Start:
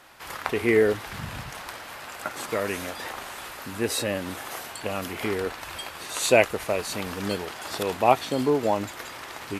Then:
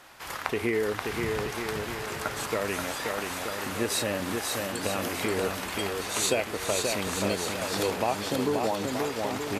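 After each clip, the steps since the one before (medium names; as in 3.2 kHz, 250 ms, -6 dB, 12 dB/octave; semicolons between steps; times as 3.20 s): compression, threshold -24 dBFS, peak gain reduction 12 dB; peaking EQ 6.4 kHz +2 dB; on a send: bouncing-ball echo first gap 530 ms, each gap 0.75×, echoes 5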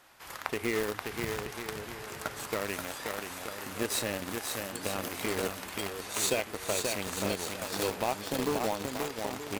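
treble shelf 11 kHz +5.5 dB; in parallel at -3.5 dB: bit crusher 4-bit; on the sum: trim -8 dB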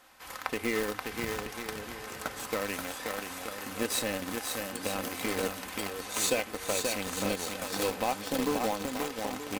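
comb 3.9 ms, depth 43%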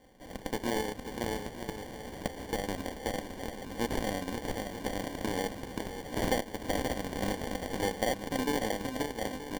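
sample-and-hold 34×; trim -1 dB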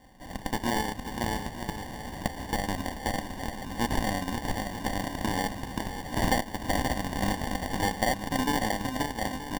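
comb 1.1 ms, depth 57%; trim +3.5 dB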